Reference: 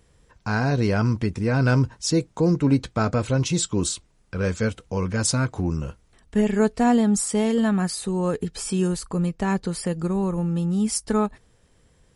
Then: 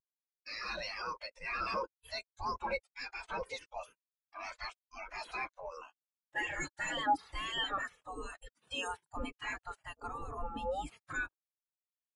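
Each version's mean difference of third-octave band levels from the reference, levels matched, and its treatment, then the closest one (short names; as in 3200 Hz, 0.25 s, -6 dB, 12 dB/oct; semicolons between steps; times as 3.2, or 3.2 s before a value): 11.0 dB: spectral gate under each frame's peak -25 dB weak; sample leveller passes 5; spectral expander 2.5:1; gain +1 dB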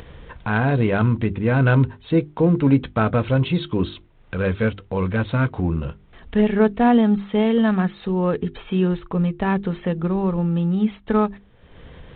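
4.5 dB: notches 50/100/150/200/250/300/350/400 Hz; upward compressor, threshold -30 dBFS; gain +3.5 dB; G.726 32 kbps 8000 Hz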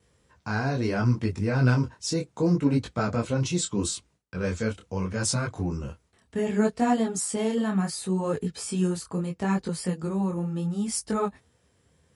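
2.0 dB: HPF 63 Hz 24 dB/oct; gate with hold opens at -55 dBFS; detuned doubles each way 25 cents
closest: third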